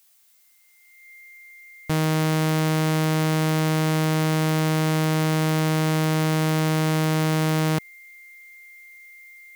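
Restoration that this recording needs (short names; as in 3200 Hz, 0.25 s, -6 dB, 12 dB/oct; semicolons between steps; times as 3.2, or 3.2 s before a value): notch 2100 Hz, Q 30; expander -44 dBFS, range -21 dB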